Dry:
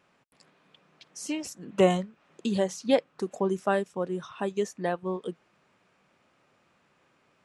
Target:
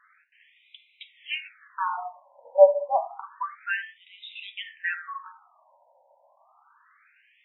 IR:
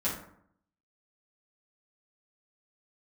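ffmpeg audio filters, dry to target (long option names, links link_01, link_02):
-filter_complex "[0:a]asplit=2[link_01][link_02];[1:a]atrim=start_sample=2205,afade=type=out:start_time=0.28:duration=0.01,atrim=end_sample=12789[link_03];[link_02][link_03]afir=irnorm=-1:irlink=0,volume=-8.5dB[link_04];[link_01][link_04]amix=inputs=2:normalize=0,afftfilt=real='re*between(b*sr/1024,700*pow(2900/700,0.5+0.5*sin(2*PI*0.29*pts/sr))/1.41,700*pow(2900/700,0.5+0.5*sin(2*PI*0.29*pts/sr))*1.41)':imag='im*between(b*sr/1024,700*pow(2900/700,0.5+0.5*sin(2*PI*0.29*pts/sr))/1.41,700*pow(2900/700,0.5+0.5*sin(2*PI*0.29*pts/sr))*1.41)':win_size=1024:overlap=0.75,volume=8dB"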